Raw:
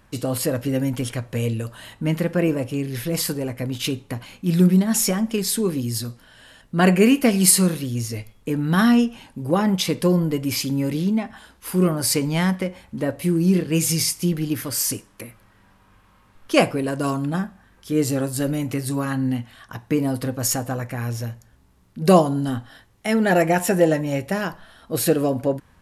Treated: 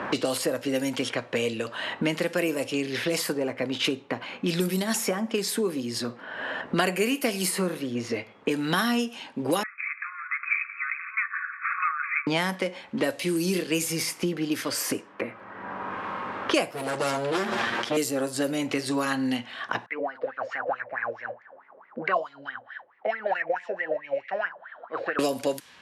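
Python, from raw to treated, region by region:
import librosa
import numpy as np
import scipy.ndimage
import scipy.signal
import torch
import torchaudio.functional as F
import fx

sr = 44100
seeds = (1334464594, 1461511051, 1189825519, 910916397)

y = fx.chain(x, sr, fx.brickwall_bandpass(low_hz=1100.0, high_hz=2600.0),
    fx.echo_feedback(ms=172, feedback_pct=37, wet_db=-16.5), at=(9.63, 12.27))
y = fx.chain(y, sr, fx.lower_of_two(delay_ms=8.6),
    fx.sustainer(db_per_s=21.0), at=(16.71, 17.97))
y = fx.chain(y, sr, fx.air_absorb(metres=98.0),
    fx.wah_lfo(hz=4.6, low_hz=510.0, high_hz=2100.0, q=10.0), at=(19.86, 25.19))
y = scipy.signal.sosfilt(scipy.signal.butter(2, 340.0, 'highpass', fs=sr, output='sos'), y)
y = fx.env_lowpass(y, sr, base_hz=1600.0, full_db=-20.5)
y = fx.band_squash(y, sr, depth_pct=100)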